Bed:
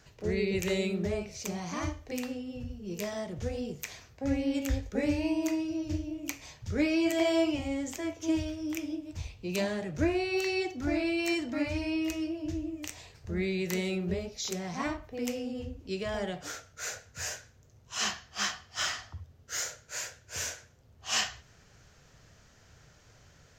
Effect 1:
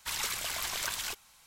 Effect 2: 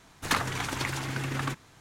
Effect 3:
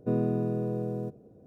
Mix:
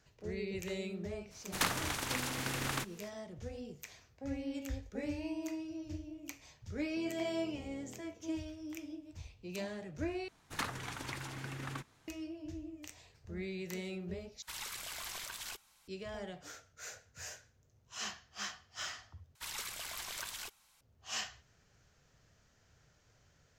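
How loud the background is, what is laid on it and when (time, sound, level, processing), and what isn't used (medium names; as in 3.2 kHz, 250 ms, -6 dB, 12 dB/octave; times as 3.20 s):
bed -10 dB
1.30 s: add 2 -5.5 dB, fades 0.02 s + spectral contrast reduction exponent 0.62
6.90 s: add 3 -11.5 dB + compression, threshold -38 dBFS
10.28 s: replace with 2 -11 dB
14.42 s: replace with 1 -7.5 dB + peak limiter -24.5 dBFS
19.35 s: replace with 1 -8.5 dB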